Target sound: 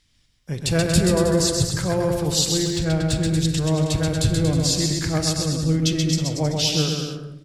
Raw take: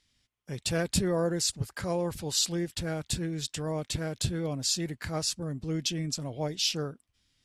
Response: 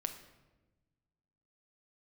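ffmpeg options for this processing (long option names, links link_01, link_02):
-filter_complex "[0:a]aecho=1:1:130|234|317.2|383.8|437:0.631|0.398|0.251|0.158|0.1,asettb=1/sr,asplit=3[link_01][link_02][link_03];[link_01]atrim=end=2.634[link_04];[link_02]atrim=start=2.63:end=3.29,asetpts=PTS-STARTPTS,afade=type=in:duration=0.004:curve=qsin,afade=type=out:start_time=0.656:duration=0.004:curve=qsin,adynamicsmooth=sensitivity=6.5:basefreq=7600[link_05];[link_03]atrim=start=3.286[link_06];[link_04][link_05]acrossfade=duration=0.004:curve1=hsin:curve2=qsin[link_07];[link_07][link_06]acrossfade=duration=0.004:curve1=qsin:curve2=hsin,asplit=2[link_08][link_09];[1:a]atrim=start_sample=2205,lowshelf=frequency=160:gain=10.5[link_10];[link_09][link_10]afir=irnorm=-1:irlink=0,volume=4dB[link_11];[link_08][link_11]amix=inputs=2:normalize=0,volume=-2dB"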